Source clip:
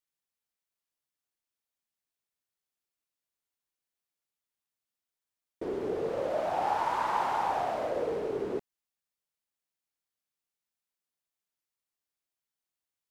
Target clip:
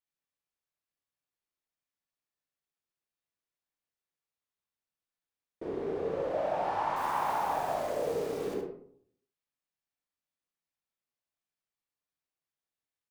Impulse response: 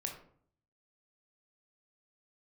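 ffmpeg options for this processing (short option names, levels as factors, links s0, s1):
-filter_complex "[0:a]highshelf=f=5300:g=-8,asettb=1/sr,asplit=3[s0][s1][s2];[s0]atrim=end=6.964[s3];[s1]atrim=start=6.96:end=8.54,asetpts=PTS-STARTPTS,afade=t=in:d=0.004:c=qsin,afade=t=out:st=1.576:d=0.004:c=qsin,acrusher=bits=8:dc=4:mix=0:aa=0.000001[s4];[s2]atrim=start=8.536[s5];[s3][s4]acrossfade=d=0.004:c1=hsin:c2=qsin[s6];[s6][s5]acrossfade=d=0.004:c1=qsin:c2=hsin,aecho=1:1:71:0.447[s7];[1:a]atrim=start_sample=2205[s8];[s7][s8]afir=irnorm=-1:irlink=0,volume=0.841"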